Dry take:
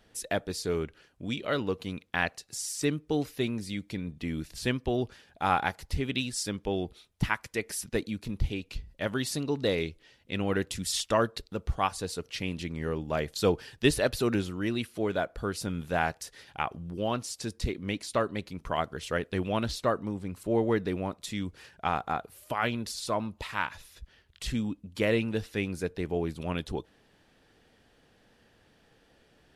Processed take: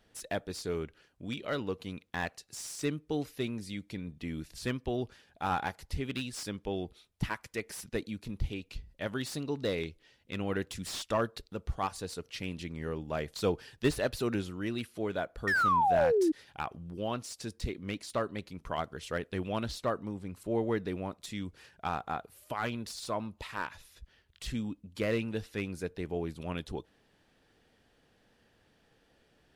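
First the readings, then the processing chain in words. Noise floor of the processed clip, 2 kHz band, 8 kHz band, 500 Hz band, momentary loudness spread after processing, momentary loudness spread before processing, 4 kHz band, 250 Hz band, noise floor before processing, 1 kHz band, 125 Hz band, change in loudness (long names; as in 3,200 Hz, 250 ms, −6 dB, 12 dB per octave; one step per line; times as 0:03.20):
−69 dBFS, −3.0 dB, −7.0 dB, −3.0 dB, 9 LU, 9 LU, −6.0 dB, −4.0 dB, −64 dBFS, −1.5 dB, −4.5 dB, −3.5 dB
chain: sound drawn into the spectrogram fall, 0:15.47–0:16.32, 300–1,900 Hz −21 dBFS
slew-rate limiting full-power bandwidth 130 Hz
level −4.5 dB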